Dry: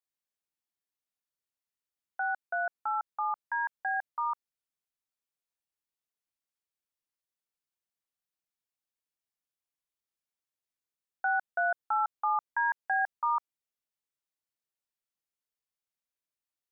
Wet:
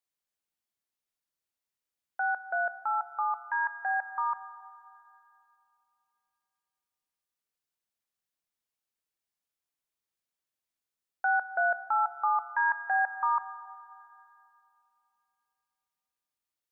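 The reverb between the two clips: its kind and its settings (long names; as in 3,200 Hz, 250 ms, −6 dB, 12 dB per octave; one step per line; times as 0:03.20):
four-comb reverb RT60 2.8 s, combs from 30 ms, DRR 13.5 dB
level +1.5 dB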